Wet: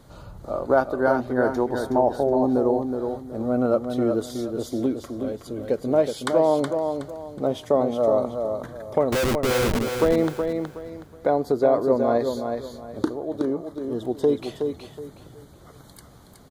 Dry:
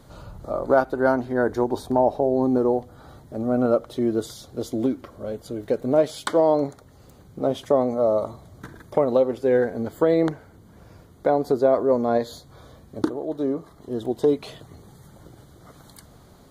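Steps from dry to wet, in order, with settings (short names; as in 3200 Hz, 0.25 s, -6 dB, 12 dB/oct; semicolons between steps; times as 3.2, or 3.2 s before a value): 9.12–9.79 Schmitt trigger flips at -30 dBFS; feedback echo 0.37 s, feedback 28%, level -6 dB; gain -1 dB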